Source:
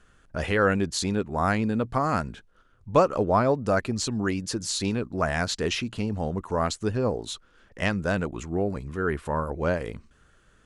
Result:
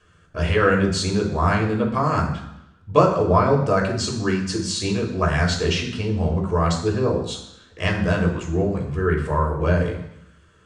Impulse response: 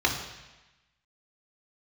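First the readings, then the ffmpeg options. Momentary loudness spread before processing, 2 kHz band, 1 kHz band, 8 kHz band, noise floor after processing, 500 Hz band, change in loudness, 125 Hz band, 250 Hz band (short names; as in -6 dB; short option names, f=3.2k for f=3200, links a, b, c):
8 LU, +4.0 dB, +4.5 dB, +2.0 dB, -54 dBFS, +4.5 dB, +5.0 dB, +8.5 dB, +4.5 dB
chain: -filter_complex "[1:a]atrim=start_sample=2205,asetrate=57330,aresample=44100[a];[0:a][a]afir=irnorm=-1:irlink=0,volume=-6.5dB"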